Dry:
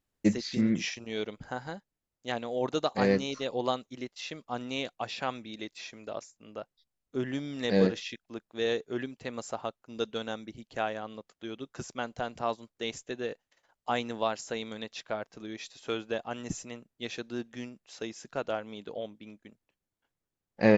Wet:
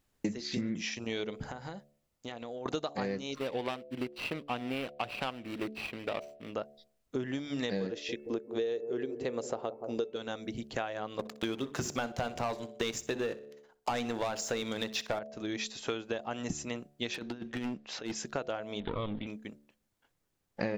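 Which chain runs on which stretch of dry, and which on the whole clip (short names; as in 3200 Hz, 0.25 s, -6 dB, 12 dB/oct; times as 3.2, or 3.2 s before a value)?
1.45–2.66 notch 1600 Hz, Q 14 + compressor 16:1, threshold -44 dBFS
3.35–6.54 median filter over 25 samples + bell 2700 Hz +10.5 dB 1.4 oct + notch 6600 Hz, Q 6.6
7.91–10.16 bell 430 Hz +12 dB 0.91 oct + de-hum 439.1 Hz, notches 6 + analogue delay 0.175 s, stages 1024, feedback 43%, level -12.5 dB
11.19–15.19 notches 50/100/150/200/250/300/350/400 Hz + sample leveller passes 3 + feedback echo 62 ms, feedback 32%, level -20 dB
17.14–18.15 LPF 4000 Hz + negative-ratio compressor -41 dBFS, ratio -0.5 + hard clip -38 dBFS
18.8–19.27 minimum comb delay 0.57 ms + steep low-pass 4100 Hz 72 dB/oct + sustainer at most 53 dB/s
whole clip: de-hum 72.49 Hz, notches 10; compressor 12:1, threshold -39 dBFS; gain +8 dB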